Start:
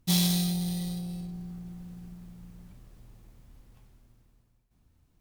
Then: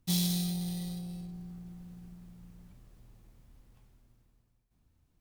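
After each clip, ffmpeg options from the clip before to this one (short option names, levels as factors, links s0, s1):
-filter_complex "[0:a]acrossover=split=480|3000[s0][s1][s2];[s1]acompressor=threshold=0.00501:ratio=2.5[s3];[s0][s3][s2]amix=inputs=3:normalize=0,volume=0.596"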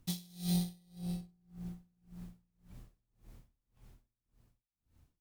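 -af "aeval=exprs='val(0)*pow(10,-34*(0.5-0.5*cos(2*PI*1.8*n/s))/20)':c=same,volume=1.78"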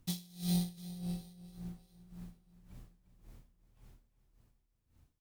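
-af "aecho=1:1:348|696|1044|1392|1740:0.178|0.0871|0.0427|0.0209|0.0103"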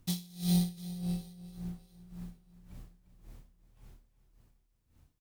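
-filter_complex "[0:a]asplit=2[s0][s1];[s1]adelay=28,volume=0.251[s2];[s0][s2]amix=inputs=2:normalize=0,volume=1.41"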